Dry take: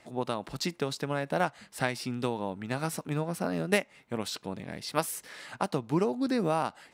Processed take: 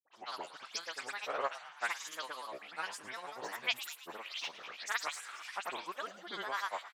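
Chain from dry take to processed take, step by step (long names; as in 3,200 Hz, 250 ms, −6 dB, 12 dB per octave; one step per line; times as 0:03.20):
every frequency bin delayed by itself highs late, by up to 111 ms
high-pass filter 1,200 Hz 12 dB per octave
high-frequency loss of the air 58 metres
granular cloud, pitch spread up and down by 7 semitones
on a send: echo with shifted repeats 109 ms, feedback 63%, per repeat +110 Hz, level −16 dB
on the sum: level +1.5 dB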